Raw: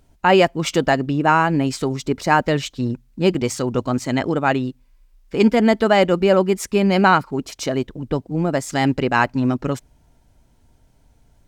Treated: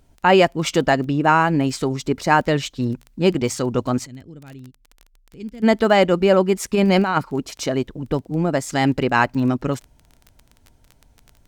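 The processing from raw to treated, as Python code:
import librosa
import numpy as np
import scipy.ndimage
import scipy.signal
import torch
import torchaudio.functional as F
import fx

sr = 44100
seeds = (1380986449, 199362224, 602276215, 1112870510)

y = fx.tone_stack(x, sr, knobs='10-0-1', at=(4.05, 5.62), fade=0.02)
y = fx.over_compress(y, sr, threshold_db=-16.0, ratio=-0.5, at=(6.67, 7.29))
y = fx.dmg_crackle(y, sr, seeds[0], per_s=17.0, level_db=-30.0)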